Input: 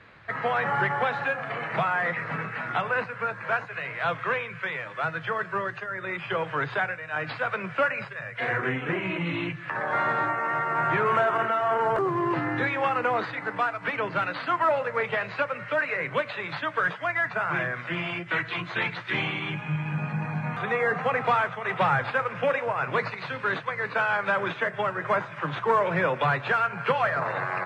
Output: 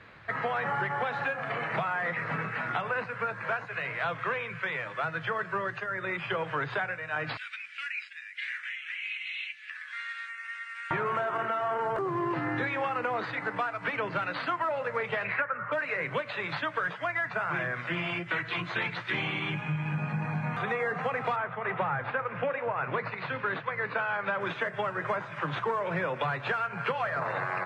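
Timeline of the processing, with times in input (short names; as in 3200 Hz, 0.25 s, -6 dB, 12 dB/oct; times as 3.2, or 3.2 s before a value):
7.37–10.91 inverse Chebyshev high-pass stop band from 810 Hz, stop band 50 dB
15.24–15.71 synth low-pass 2500 Hz -> 1100 Hz, resonance Q 5
21.35–24.39 LPF 2000 Hz -> 3900 Hz
whole clip: compressor, threshold -27 dBFS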